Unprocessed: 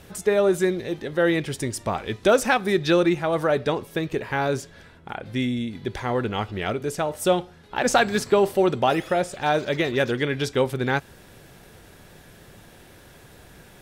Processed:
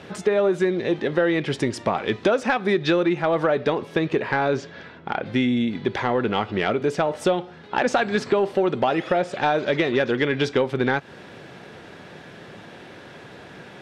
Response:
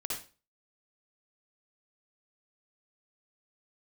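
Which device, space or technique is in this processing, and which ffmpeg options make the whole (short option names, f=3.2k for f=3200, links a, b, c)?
AM radio: -filter_complex "[0:a]highpass=160,lowpass=3.7k,acompressor=threshold=-25dB:ratio=6,asoftclip=type=tanh:threshold=-16dB,asettb=1/sr,asplit=3[a][b][c];[a]atrim=end=4.344[d];[b]atrim=start=4.34:end=5.26,asetpts=PTS-STARTPTS,afade=t=in:d=0.004:c=qsin,afade=t=out:st=0.916:d=0.004:c=qsin,lowpass=f=7.2k:w=0.5412,lowpass=f=7.2k:w=1.3066[e];[c]atrim=start=5.256[f];[d][e]acrossfade=d=0.004:c1=hsin:c2=qsin[g];[g][f]acrossfade=d=0.004:c1=qsin:c2=hsin,volume=8.5dB"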